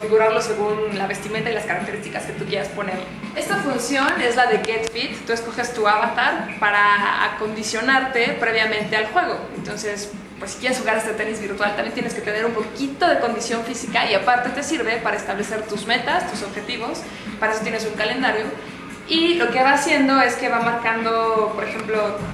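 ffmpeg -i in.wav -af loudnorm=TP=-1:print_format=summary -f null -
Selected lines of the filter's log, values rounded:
Input Integrated:    -20.3 LUFS
Input True Peak:      -3.0 dBTP
Input LRA:             5.0 LU
Input Threshold:     -30.4 LUFS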